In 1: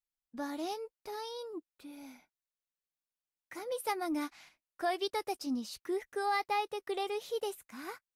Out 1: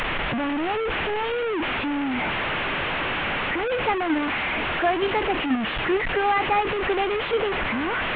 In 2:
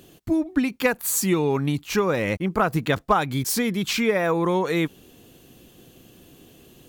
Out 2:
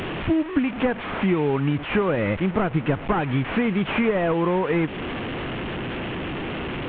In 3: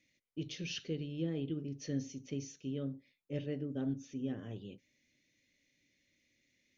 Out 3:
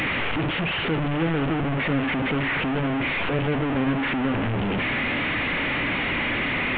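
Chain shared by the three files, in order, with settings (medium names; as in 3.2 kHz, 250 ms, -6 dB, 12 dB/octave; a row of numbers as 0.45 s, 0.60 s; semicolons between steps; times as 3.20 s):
one-bit delta coder 16 kbps, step -30 dBFS; compression 3:1, threshold -27 dBFS; normalise loudness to -24 LUFS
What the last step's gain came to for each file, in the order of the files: +11.0 dB, +7.0 dB, +12.0 dB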